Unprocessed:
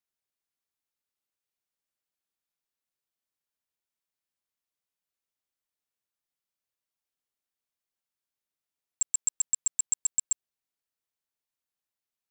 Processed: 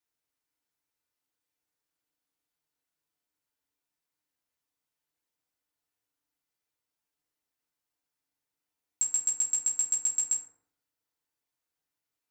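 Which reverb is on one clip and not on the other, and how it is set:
feedback delay network reverb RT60 0.63 s, low-frequency decay 1.05×, high-frequency decay 0.45×, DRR −3 dB
level −1 dB

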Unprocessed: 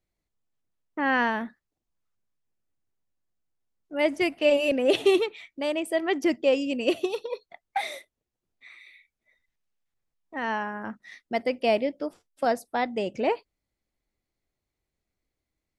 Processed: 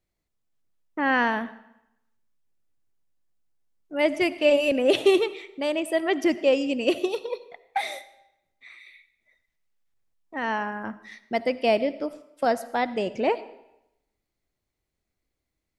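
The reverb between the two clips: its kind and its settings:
comb and all-pass reverb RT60 0.85 s, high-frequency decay 0.9×, pre-delay 35 ms, DRR 16 dB
level +1.5 dB

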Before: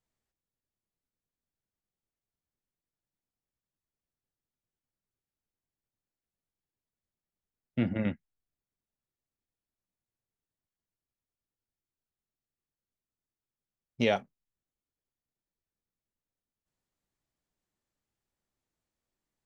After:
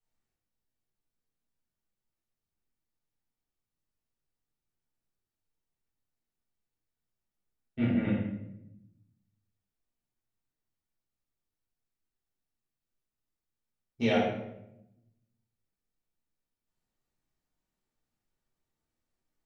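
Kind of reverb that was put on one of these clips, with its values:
rectangular room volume 260 cubic metres, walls mixed, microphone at 3.6 metres
level −10 dB

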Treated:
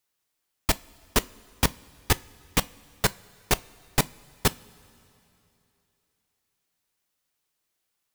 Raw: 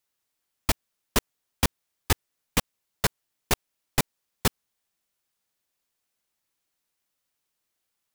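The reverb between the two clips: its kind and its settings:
coupled-rooms reverb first 0.25 s, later 3 s, from −18 dB, DRR 15 dB
level +1 dB

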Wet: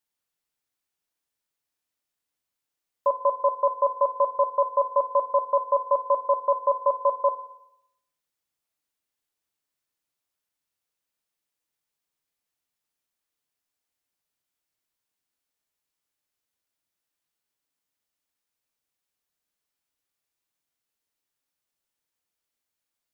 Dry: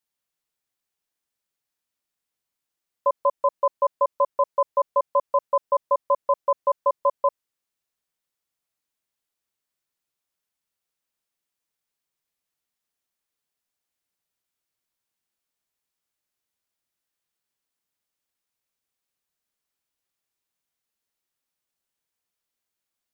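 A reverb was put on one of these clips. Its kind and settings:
feedback delay network reverb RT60 0.8 s, low-frequency decay 0.85×, high-frequency decay 0.8×, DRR 9 dB
level −1 dB

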